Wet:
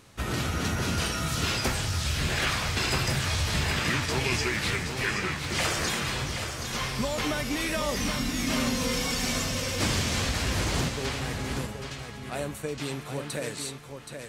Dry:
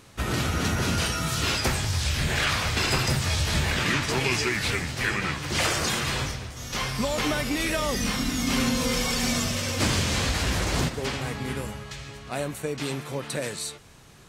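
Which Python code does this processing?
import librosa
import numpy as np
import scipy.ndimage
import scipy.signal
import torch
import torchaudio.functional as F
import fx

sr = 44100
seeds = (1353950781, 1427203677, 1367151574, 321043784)

y = x + 10.0 ** (-7.0 / 20.0) * np.pad(x, (int(774 * sr / 1000.0), 0))[:len(x)]
y = y * librosa.db_to_amplitude(-3.0)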